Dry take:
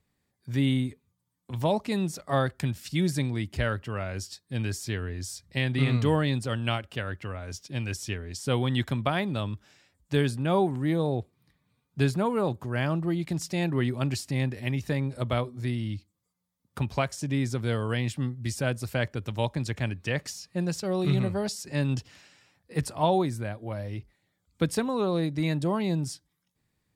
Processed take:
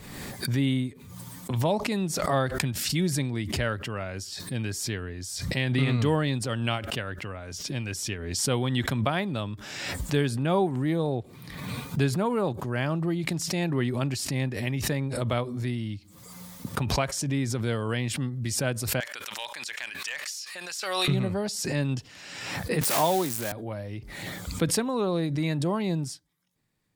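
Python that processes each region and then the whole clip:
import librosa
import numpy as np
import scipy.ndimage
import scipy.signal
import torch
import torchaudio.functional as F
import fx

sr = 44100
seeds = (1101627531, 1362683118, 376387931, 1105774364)

y = fx.chain(x, sr, fx.highpass(hz=1500.0, slope=12),
    fx.clip_hard(threshold_db=-27.0),
    fx.env_flatten(amount_pct=50), at=(19.0, 21.08))
y = fx.chain(y, sr, fx.crossing_spikes(level_db=-21.0),
    fx.highpass(hz=230.0, slope=6),
    fx.band_squash(depth_pct=40), at=(22.81, 23.52))
y = fx.peak_eq(y, sr, hz=66.0, db=-7.0, octaves=1.0)
y = fx.pre_swell(y, sr, db_per_s=39.0)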